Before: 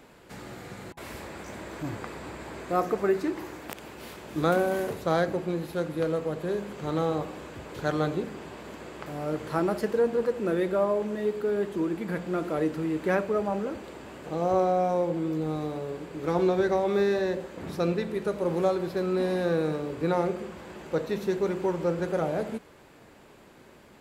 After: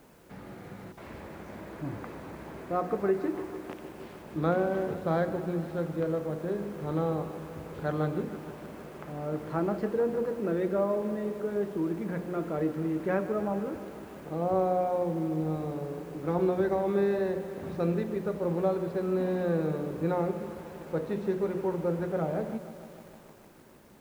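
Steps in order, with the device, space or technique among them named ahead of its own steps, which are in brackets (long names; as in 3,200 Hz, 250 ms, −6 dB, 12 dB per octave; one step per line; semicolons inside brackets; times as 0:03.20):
cassette deck with a dirty head (head-to-tape spacing loss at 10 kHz 28 dB; tape wow and flutter 11 cents; white noise bed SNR 35 dB)
parametric band 180 Hz +3 dB 0.77 octaves
mains-hum notches 60/120/180/240/300/360/420/480 Hz
feedback echo at a low word length 152 ms, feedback 80%, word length 8 bits, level −14 dB
level −1.5 dB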